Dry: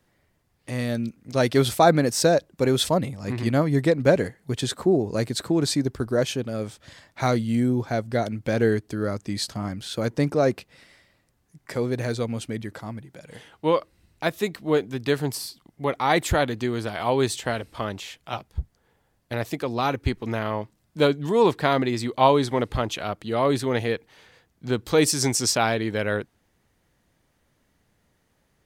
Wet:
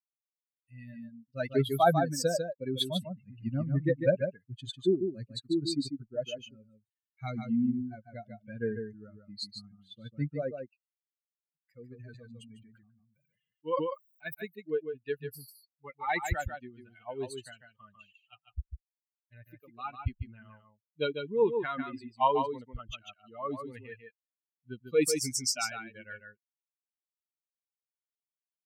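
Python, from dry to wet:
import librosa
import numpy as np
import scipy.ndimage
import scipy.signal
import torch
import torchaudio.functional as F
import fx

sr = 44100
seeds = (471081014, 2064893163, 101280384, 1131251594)

y = fx.bin_expand(x, sr, power=3.0)
y = y + 10.0 ** (-6.5 / 20.0) * np.pad(y, (int(147 * sr / 1000.0), 0))[:len(y)]
y = fx.sustainer(y, sr, db_per_s=41.0, at=(12.04, 14.33), fade=0.02)
y = y * 10.0 ** (-2.5 / 20.0)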